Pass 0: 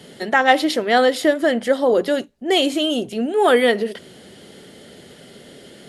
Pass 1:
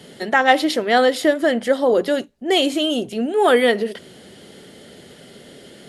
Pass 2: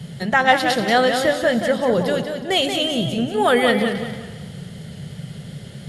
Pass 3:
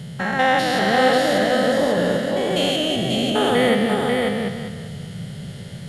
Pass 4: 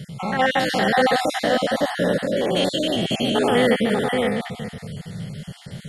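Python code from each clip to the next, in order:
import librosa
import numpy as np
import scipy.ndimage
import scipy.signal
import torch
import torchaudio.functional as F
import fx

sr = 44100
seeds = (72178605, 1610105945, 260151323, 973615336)

y1 = x
y2 = fx.low_shelf_res(y1, sr, hz=210.0, db=12.5, q=3.0)
y2 = fx.echo_heads(y2, sr, ms=111, heads='first and second', feedback_pct=45, wet_db=-18.0)
y2 = fx.echo_warbled(y2, sr, ms=183, feedback_pct=36, rate_hz=2.8, cents=89, wet_db=-7.0)
y3 = fx.spec_steps(y2, sr, hold_ms=200)
y3 = y3 + 10.0 ** (-3.5 / 20.0) * np.pad(y3, (int(540 * sr / 1000.0), 0))[:len(y3)]
y3 = y3 * 10.0 ** (1.5 / 20.0)
y4 = fx.spec_dropout(y3, sr, seeds[0], share_pct=28)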